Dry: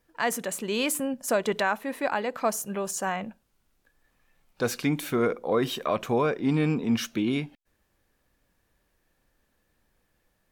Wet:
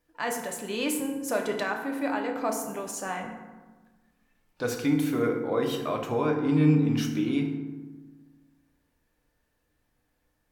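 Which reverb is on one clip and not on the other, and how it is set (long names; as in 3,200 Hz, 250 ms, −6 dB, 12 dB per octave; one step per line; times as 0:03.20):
feedback delay network reverb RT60 1.3 s, low-frequency decay 1.4×, high-frequency decay 0.5×, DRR 1.5 dB
level −5 dB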